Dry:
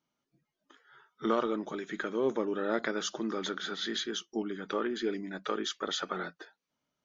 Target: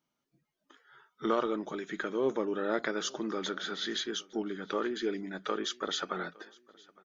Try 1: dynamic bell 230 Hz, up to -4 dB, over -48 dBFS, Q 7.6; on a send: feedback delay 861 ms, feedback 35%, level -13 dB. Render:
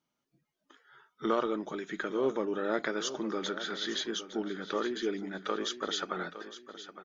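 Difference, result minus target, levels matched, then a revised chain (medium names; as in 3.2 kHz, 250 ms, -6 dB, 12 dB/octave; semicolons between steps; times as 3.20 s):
echo-to-direct +11.5 dB
dynamic bell 230 Hz, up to -4 dB, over -48 dBFS, Q 7.6; on a send: feedback delay 861 ms, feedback 35%, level -24.5 dB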